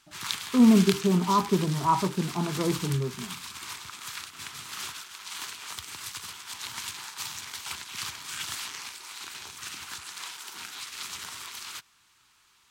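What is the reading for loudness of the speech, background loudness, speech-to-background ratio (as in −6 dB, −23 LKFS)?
−24.5 LKFS, −36.0 LKFS, 11.5 dB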